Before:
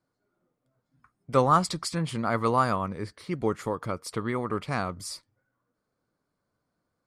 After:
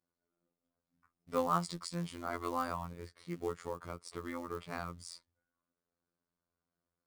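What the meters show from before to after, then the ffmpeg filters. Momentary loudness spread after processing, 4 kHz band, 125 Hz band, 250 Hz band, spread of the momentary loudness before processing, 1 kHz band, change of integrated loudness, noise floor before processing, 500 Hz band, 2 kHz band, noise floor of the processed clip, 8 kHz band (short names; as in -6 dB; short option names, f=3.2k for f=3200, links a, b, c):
13 LU, -10.5 dB, -13.0 dB, -11.0 dB, 12 LU, -11.0 dB, -11.0 dB, -81 dBFS, -11.0 dB, -11.0 dB, under -85 dBFS, -10.5 dB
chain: -af "aresample=22050,aresample=44100,acrusher=bits=5:mode=log:mix=0:aa=0.000001,afftfilt=real='hypot(re,im)*cos(PI*b)':imag='0':win_size=2048:overlap=0.75,volume=-8dB"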